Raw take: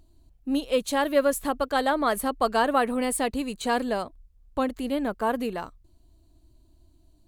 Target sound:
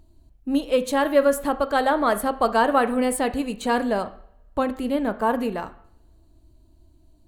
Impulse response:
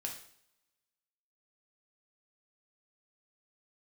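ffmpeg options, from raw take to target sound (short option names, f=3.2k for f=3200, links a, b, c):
-filter_complex "[0:a]asplit=2[a][b];[1:a]atrim=start_sample=2205,lowpass=2.6k[c];[b][c]afir=irnorm=-1:irlink=0,volume=-3dB[d];[a][d]amix=inputs=2:normalize=0"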